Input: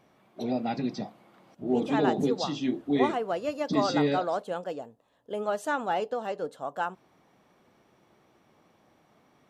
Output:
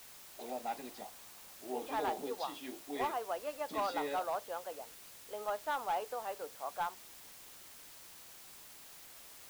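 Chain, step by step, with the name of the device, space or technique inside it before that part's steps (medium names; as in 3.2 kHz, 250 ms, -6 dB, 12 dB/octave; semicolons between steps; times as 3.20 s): drive-through speaker (band-pass 500–3900 Hz; peaking EQ 950 Hz +6 dB 0.77 oct; hard clipper -20.5 dBFS, distortion -16 dB; white noise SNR 13 dB); trim -8.5 dB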